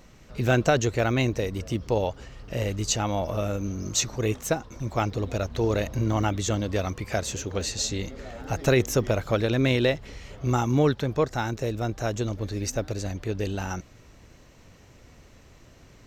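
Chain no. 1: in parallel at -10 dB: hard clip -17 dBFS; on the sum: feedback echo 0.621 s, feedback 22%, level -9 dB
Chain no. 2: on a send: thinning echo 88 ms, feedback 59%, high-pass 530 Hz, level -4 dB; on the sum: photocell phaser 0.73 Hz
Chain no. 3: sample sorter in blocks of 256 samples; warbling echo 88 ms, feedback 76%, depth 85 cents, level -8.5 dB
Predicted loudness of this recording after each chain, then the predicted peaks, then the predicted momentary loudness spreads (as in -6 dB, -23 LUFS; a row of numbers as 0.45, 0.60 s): -24.0, -29.0, -25.5 LUFS; -7.5, -8.0, -8.0 dBFS; 9, 10, 9 LU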